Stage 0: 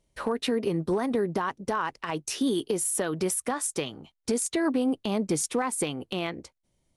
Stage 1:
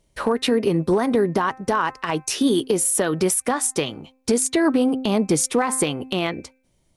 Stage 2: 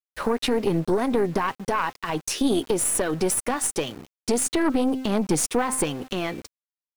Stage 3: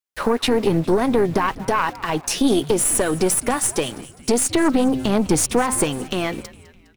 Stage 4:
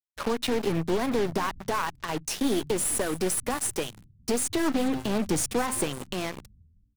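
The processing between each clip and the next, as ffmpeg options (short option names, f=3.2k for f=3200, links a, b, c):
-af "bandreject=f=260.3:t=h:w=4,bandreject=f=520.6:t=h:w=4,bandreject=f=780.9:t=h:w=4,bandreject=f=1.0412k:t=h:w=4,bandreject=f=1.3015k:t=h:w=4,bandreject=f=1.5618k:t=h:w=4,bandreject=f=1.8221k:t=h:w=4,bandreject=f=2.0824k:t=h:w=4,bandreject=f=2.3427k:t=h:w=4,bandreject=f=2.603k:t=h:w=4,volume=7.5dB"
-af "aeval=exprs='(tanh(4.47*val(0)+0.55)-tanh(0.55))/4.47':c=same,aeval=exprs='val(0)*gte(abs(val(0)),0.01)':c=same"
-filter_complex "[0:a]asplit=5[a][b][c][d][e];[b]adelay=205,afreqshift=-130,volume=-18.5dB[f];[c]adelay=410,afreqshift=-260,volume=-24.2dB[g];[d]adelay=615,afreqshift=-390,volume=-29.9dB[h];[e]adelay=820,afreqshift=-520,volume=-35.5dB[i];[a][f][g][h][i]amix=inputs=5:normalize=0,volume=4.5dB"
-filter_complex "[0:a]acrossover=split=160[a][b];[a]asplit=2[c][d];[d]adelay=49,volume=-6dB[e];[c][e]amix=inputs=2:normalize=0[f];[b]acrusher=bits=3:mix=0:aa=0.5[g];[f][g]amix=inputs=2:normalize=0,volume=-8.5dB"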